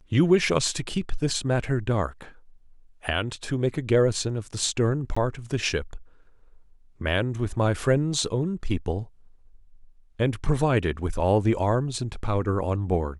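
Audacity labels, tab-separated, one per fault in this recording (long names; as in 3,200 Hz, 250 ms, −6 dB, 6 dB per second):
5.150000	5.170000	drop-out 15 ms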